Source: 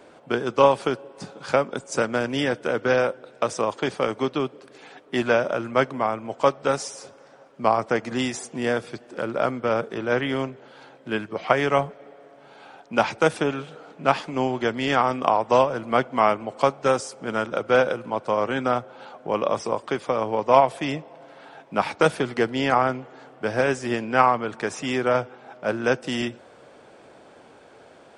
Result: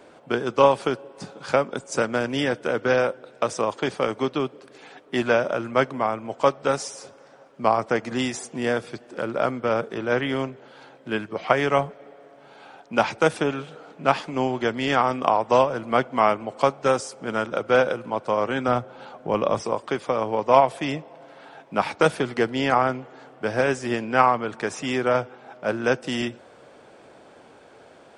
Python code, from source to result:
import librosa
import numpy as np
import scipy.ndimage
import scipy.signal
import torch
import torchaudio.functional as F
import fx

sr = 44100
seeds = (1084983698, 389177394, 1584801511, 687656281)

y = fx.low_shelf(x, sr, hz=180.0, db=8.5, at=(18.68, 19.63))